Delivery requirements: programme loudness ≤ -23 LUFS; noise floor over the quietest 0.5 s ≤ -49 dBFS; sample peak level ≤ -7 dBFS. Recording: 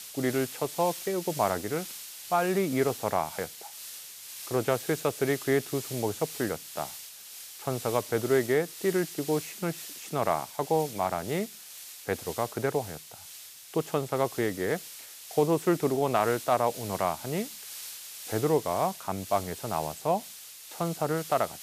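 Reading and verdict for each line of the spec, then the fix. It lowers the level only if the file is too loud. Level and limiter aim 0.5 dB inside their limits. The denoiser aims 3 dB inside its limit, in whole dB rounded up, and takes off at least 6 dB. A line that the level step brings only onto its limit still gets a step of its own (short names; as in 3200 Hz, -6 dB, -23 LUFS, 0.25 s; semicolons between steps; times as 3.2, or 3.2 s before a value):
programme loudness -30.0 LUFS: OK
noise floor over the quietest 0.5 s -47 dBFS: fail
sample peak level -11.0 dBFS: OK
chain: denoiser 6 dB, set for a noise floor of -47 dBFS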